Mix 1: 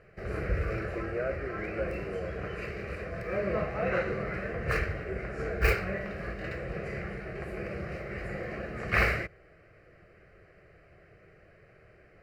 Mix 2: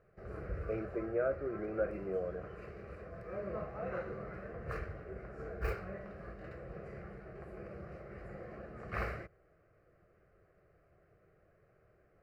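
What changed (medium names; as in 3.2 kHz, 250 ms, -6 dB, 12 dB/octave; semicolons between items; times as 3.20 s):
background -10.5 dB; master: add resonant high shelf 1.6 kHz -7 dB, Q 1.5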